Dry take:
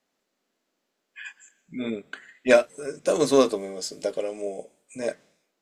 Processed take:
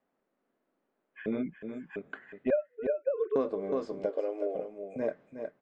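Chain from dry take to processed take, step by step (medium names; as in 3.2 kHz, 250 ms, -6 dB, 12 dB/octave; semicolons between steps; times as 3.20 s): 2.50–3.36 s: formants replaced by sine waves; low-pass 1.4 kHz 12 dB/octave; 1.26–1.96 s: reverse; delay 365 ms -10 dB; compression 4:1, threshold -27 dBFS, peak gain reduction 14.5 dB; 4.09–4.55 s: brick-wall FIR high-pass 260 Hz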